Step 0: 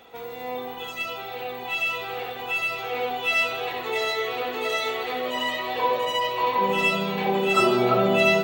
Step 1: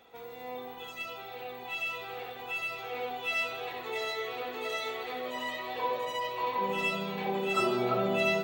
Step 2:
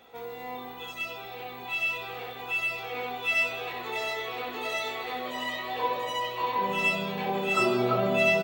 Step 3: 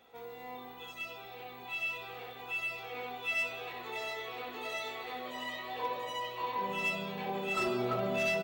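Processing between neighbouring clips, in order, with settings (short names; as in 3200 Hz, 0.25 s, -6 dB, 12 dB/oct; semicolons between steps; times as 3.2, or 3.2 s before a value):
notch 2900 Hz, Q 21; gain -8.5 dB
doubler 17 ms -6 dB; gain +3 dB
hard clip -19.5 dBFS, distortion -20 dB; crackle 57/s -57 dBFS; gain -7 dB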